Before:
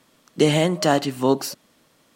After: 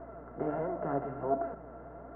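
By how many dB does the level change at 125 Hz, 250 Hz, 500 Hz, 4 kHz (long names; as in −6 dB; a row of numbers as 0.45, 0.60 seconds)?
−17.5 dB, −16.5 dB, −12.0 dB, below −40 dB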